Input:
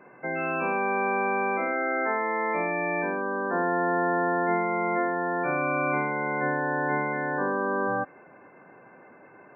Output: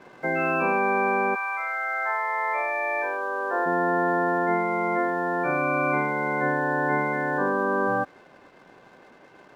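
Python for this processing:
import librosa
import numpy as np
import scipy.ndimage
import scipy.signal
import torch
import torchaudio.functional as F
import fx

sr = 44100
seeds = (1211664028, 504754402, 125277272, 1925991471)

y = fx.rider(x, sr, range_db=5, speed_s=2.0)
y = np.sign(y) * np.maximum(np.abs(y) - 10.0 ** (-57.0 / 20.0), 0.0)
y = fx.highpass(y, sr, hz=fx.line((1.34, 1000.0), (3.65, 370.0)), slope=24, at=(1.34, 3.65), fade=0.02)
y = F.gain(torch.from_numpy(y), 2.5).numpy()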